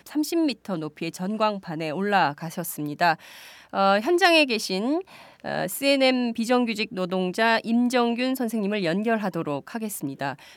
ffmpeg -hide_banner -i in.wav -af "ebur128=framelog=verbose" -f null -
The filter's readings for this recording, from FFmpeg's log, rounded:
Integrated loudness:
  I:         -24.1 LUFS
  Threshold: -34.3 LUFS
Loudness range:
  LRA:         3.4 LU
  Threshold: -43.7 LUFS
  LRA low:   -25.8 LUFS
  LRA high:  -22.4 LUFS